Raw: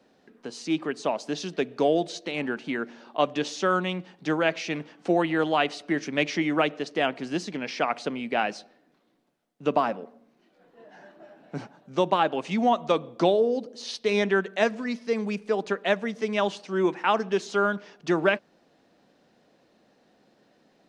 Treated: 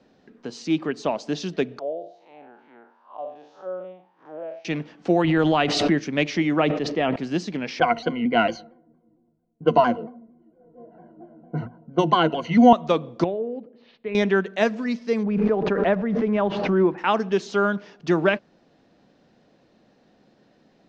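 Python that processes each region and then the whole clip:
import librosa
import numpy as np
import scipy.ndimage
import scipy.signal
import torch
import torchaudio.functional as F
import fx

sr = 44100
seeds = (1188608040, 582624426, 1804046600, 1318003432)

y = fx.chain(x, sr, fx.spec_blur(span_ms=138.0),
    fx.high_shelf(hz=4600.0, db=8.5),
    fx.auto_wah(base_hz=580.0, top_hz=1200.0, q=6.3, full_db=-23.5, direction='down'), at=(1.79, 4.65))
y = fx.chain(y, sr, fx.low_shelf(hz=150.0, db=6.0),
    fx.pre_swell(db_per_s=26.0), at=(5.24, 6.0))
y = fx.chain(y, sr, fx.lowpass(hz=2600.0, slope=6),
    fx.notch(hz=1500.0, q=9.2),
    fx.sustainer(db_per_s=55.0), at=(6.6, 7.16))
y = fx.chain(y, sr, fx.env_lowpass(base_hz=520.0, full_db=-21.0),
    fx.ripple_eq(per_octave=1.9, db=17),
    fx.vibrato_shape(shape='saw_down', rate_hz=4.4, depth_cents=100.0), at=(7.8, 12.73))
y = fx.chain(y, sr, fx.ladder_lowpass(hz=2800.0, resonance_pct=40),
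    fx.high_shelf(hz=2000.0, db=-9.5), at=(13.24, 14.15))
y = fx.chain(y, sr, fx.block_float(bits=5),
    fx.lowpass(hz=1500.0, slope=12),
    fx.pre_swell(db_per_s=37.0), at=(15.23, 16.98))
y = scipy.signal.sosfilt(scipy.signal.butter(4, 6900.0, 'lowpass', fs=sr, output='sos'), y)
y = fx.low_shelf(y, sr, hz=210.0, db=9.0)
y = y * librosa.db_to_amplitude(1.0)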